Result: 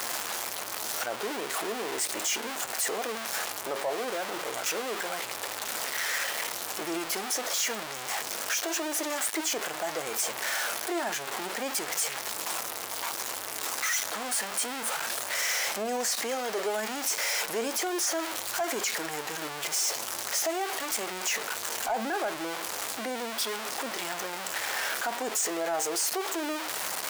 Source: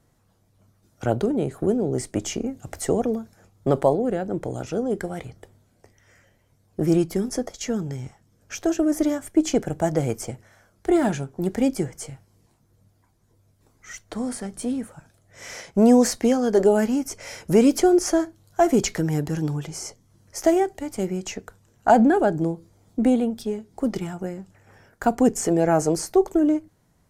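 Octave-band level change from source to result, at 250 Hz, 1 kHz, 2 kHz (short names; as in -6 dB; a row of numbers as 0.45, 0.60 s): -18.0, -4.5, +5.5 dB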